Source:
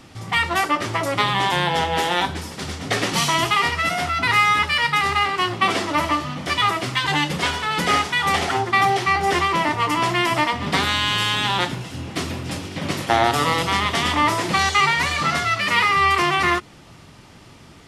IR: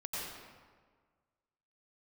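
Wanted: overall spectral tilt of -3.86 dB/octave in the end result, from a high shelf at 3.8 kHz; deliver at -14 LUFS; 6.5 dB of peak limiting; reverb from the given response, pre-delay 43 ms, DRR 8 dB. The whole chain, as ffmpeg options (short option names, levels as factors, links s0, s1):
-filter_complex "[0:a]highshelf=f=3800:g=-5,alimiter=limit=0.282:level=0:latency=1,asplit=2[s0][s1];[1:a]atrim=start_sample=2205,adelay=43[s2];[s1][s2]afir=irnorm=-1:irlink=0,volume=0.299[s3];[s0][s3]amix=inputs=2:normalize=0,volume=2.24"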